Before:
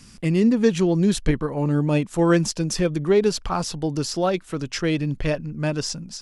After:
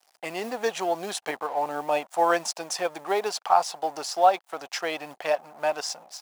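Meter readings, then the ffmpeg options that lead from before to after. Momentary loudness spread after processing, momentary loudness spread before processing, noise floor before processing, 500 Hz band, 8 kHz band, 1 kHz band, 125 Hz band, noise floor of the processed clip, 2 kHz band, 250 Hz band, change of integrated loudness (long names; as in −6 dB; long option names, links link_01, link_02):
11 LU, 7 LU, −47 dBFS, −4.0 dB, −3.0 dB, +7.5 dB, −29.0 dB, −68 dBFS, −1.0 dB, −18.5 dB, −5.0 dB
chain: -af "aeval=exprs='sgn(val(0))*max(abs(val(0))-0.0075,0)':channel_layout=same,acrusher=bits=8:mode=log:mix=0:aa=0.000001,highpass=frequency=750:width_type=q:width=4.9,volume=-2dB"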